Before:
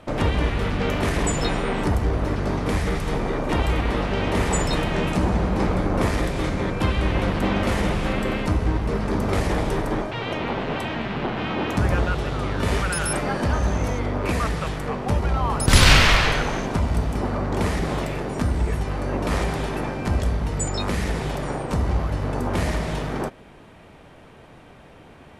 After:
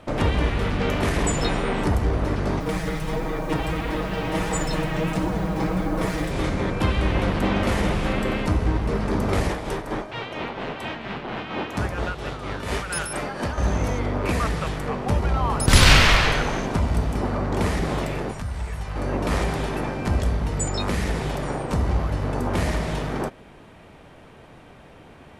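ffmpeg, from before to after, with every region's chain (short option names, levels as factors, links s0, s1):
-filter_complex "[0:a]asettb=1/sr,asplit=3[s0][s1][s2];[s0]atrim=end=2.604[s3];[s1]atrim=start=2.6:end=6.31,asetpts=PTS-STARTPTS,afade=t=in:d=0.004:c=qsin,afade=t=out:st=3.706:d=0.004:c=qsin,aecho=1:1:6.3:0.75,atrim=end_sample=163611,acrusher=bits=6:mix=0:aa=0.5,flanger=delay=3.1:depth=4.4:regen=66:speed=1.5:shape=triangular[s4];[s2]atrim=start=6.306[s5];[s3][s4]acrossfade=d=0.004:c1=hsin:c2=qsin[s6];[s6][s5]acrossfade=d=0.004:c1=qsin:c2=hsin,asettb=1/sr,asplit=3[s7][s8][s9];[s7]atrim=end=9.494[s10];[s8]atrim=start=9.49:end=13.58,asetpts=PTS-STARTPTS,afade=t=in:d=0.004:c=qsin,afade=t=out:st=4.086:d=0.004:c=qsin,lowshelf=f=330:g=-5.5,tremolo=f=4.3:d=0.55[s11];[s9]atrim=start=13.576[s12];[s10][s11]acrossfade=d=0.004:c1=hsin:c2=qsin[s13];[s13][s12]acrossfade=d=0.004:c1=qsin:c2=hsin,asettb=1/sr,asplit=3[s14][s15][s16];[s14]atrim=end=18.314[s17];[s15]atrim=start=18.31:end=18.96,asetpts=PTS-STARTPTS,afade=t=in:d=0.004:c=qsin,afade=t=out:st=0.646:d=0.004:c=qsin,acrossover=split=200|1200[s18][s19][s20];[s18]acompressor=threshold=0.0501:ratio=4[s21];[s19]acompressor=threshold=0.0224:ratio=4[s22];[s20]acompressor=threshold=0.00891:ratio=4[s23];[s21][s22][s23]amix=inputs=3:normalize=0,equalizer=f=310:t=o:w=1.3:g=-12.5[s24];[s16]atrim=start=18.956[s25];[s17][s24]acrossfade=d=0.004:c1=hsin:c2=qsin[s26];[s26][s25]acrossfade=d=0.004:c1=qsin:c2=hsin"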